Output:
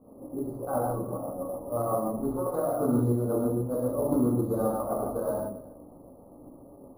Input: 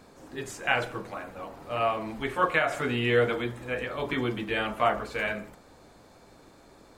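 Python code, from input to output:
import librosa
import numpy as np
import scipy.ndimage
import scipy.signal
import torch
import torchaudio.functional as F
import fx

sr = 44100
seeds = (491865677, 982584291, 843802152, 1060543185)

p1 = fx.wiener(x, sr, points=25)
p2 = scipy.signal.sosfilt(scipy.signal.ellip(3, 1.0, 40, [1200.0, 4500.0], 'bandstop', fs=sr, output='sos'), p1)
p3 = fx.low_shelf(p2, sr, hz=150.0, db=-3.5)
p4 = fx.over_compress(p3, sr, threshold_db=-31.0, ratio=-1.0)
p5 = fx.tremolo_shape(p4, sr, shape='saw_up', hz=7.7, depth_pct=65)
p6 = fx.air_absorb(p5, sr, metres=340.0)
p7 = fx.small_body(p6, sr, hz=(250.0, 550.0, 2000.0), ring_ms=30, db=9)
p8 = p7 + fx.echo_single(p7, sr, ms=267, db=-21.0, dry=0)
p9 = fx.rev_gated(p8, sr, seeds[0], gate_ms=190, shape='flat', drr_db=-3.5)
y = np.repeat(p9[::4], 4)[:len(p9)]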